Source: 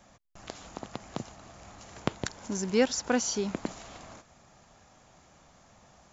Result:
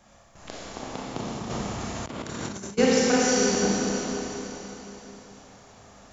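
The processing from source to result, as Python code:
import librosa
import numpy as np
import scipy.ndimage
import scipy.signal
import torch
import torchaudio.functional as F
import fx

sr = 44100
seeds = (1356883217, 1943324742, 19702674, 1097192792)

y = fx.rev_schroeder(x, sr, rt60_s=3.7, comb_ms=27, drr_db=-6.5)
y = fx.over_compress(y, sr, threshold_db=-33.0, ratio=-0.5, at=(1.49, 2.77), fade=0.02)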